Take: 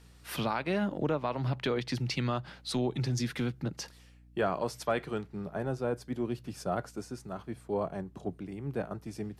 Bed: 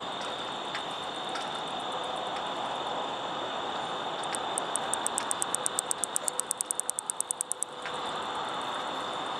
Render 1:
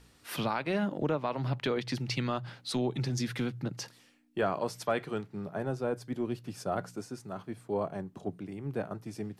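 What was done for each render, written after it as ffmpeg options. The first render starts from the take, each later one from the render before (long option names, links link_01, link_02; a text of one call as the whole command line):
ffmpeg -i in.wav -af "bandreject=frequency=60:width_type=h:width=4,bandreject=frequency=120:width_type=h:width=4,bandreject=frequency=180:width_type=h:width=4" out.wav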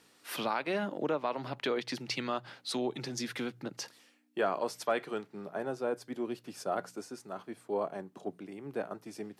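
ffmpeg -i in.wav -af "highpass=280" out.wav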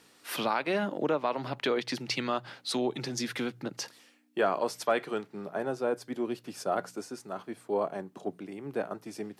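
ffmpeg -i in.wav -af "volume=3.5dB" out.wav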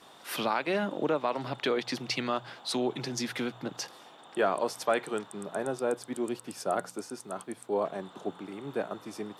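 ffmpeg -i in.wav -i bed.wav -filter_complex "[1:a]volume=-19dB[link_01];[0:a][link_01]amix=inputs=2:normalize=0" out.wav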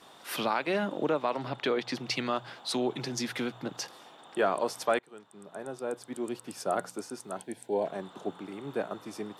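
ffmpeg -i in.wav -filter_complex "[0:a]asettb=1/sr,asplit=3[link_01][link_02][link_03];[link_01]atrim=end=1.364[link_04];[link_02]atrim=start=1.36:end=2.07,asetpts=PTS-STARTPTS,afade=type=in:duration=0.004:curve=qsin,afade=type=out:start_time=0.706:duration=0.004:curve=qsin,highshelf=frequency=6000:gain=-6.5[link_05];[link_03]atrim=start=2.066[link_06];[link_04][link_05]acrossfade=duration=0.004:curve1=hsin:curve2=qsin[link_07];[link_07][link_06]acrossfade=duration=0.004:curve1=qsin:curve2=hsin,asettb=1/sr,asplit=3[link_08][link_09][link_10];[link_08]atrim=end=7.364[link_11];[link_09]atrim=start=7.36:end=7.87,asetpts=PTS-STARTPTS,afade=type=in:duration=0.004:curve=qsin,afade=type=out:start_time=0.506:duration=0.004:curve=qsin,asuperstop=centerf=1200:order=4:qfactor=2.2[link_12];[link_10]atrim=start=7.866[link_13];[link_11][link_12]acrossfade=duration=0.004:curve1=hsin:curve2=qsin[link_14];[link_14][link_13]acrossfade=duration=0.004:curve1=qsin:curve2=hsin,asplit=2[link_15][link_16];[link_15]atrim=end=4.99,asetpts=PTS-STARTPTS,afade=type=out:start_time=4.986:duration=0.004:curve=hsin:silence=0.0707946[link_17];[link_16]atrim=start=4.99,asetpts=PTS-STARTPTS,afade=type=in:duration=1.66:silence=0.0707946[link_18];[link_17][link_18]concat=n=2:v=0:a=1" out.wav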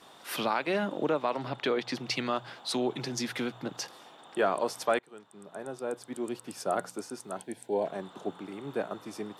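ffmpeg -i in.wav -af anull out.wav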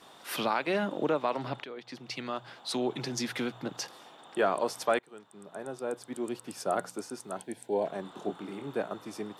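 ffmpeg -i in.wav -filter_complex "[0:a]asettb=1/sr,asplit=3[link_01][link_02][link_03];[link_01]atrim=end=8.024[link_04];[link_02]atrim=start=8.02:end=8.67,asetpts=PTS-STARTPTS,afade=type=in:duration=0.004:curve=qsin,afade=type=out:start_time=0.646:duration=0.004:curve=qsin,asplit=2[link_05][link_06];[link_06]adelay=25,volume=-5.5dB[link_07];[link_05][link_07]amix=inputs=2:normalize=0,atrim=end_sample=28665[link_08];[link_03]atrim=start=8.666[link_09];[link_04][link_08]acrossfade=duration=0.004:curve1=hsin:curve2=qsin[link_10];[link_10][link_09]acrossfade=duration=0.004:curve1=qsin:curve2=hsin,asplit=2[link_11][link_12];[link_11]atrim=end=1.64,asetpts=PTS-STARTPTS,afade=type=out:start_time=1.636:duration=0.004:curve=hsin:silence=0.141254[link_13];[link_12]atrim=start=1.64,asetpts=PTS-STARTPTS,afade=type=in:duration=1.36:silence=0.141254[link_14];[link_13][link_14]concat=n=2:v=0:a=1" out.wav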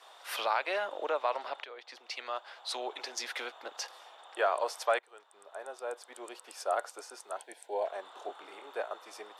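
ffmpeg -i in.wav -af "highpass=frequency=530:width=0.5412,highpass=frequency=530:width=1.3066,highshelf=frequency=8000:gain=-6" out.wav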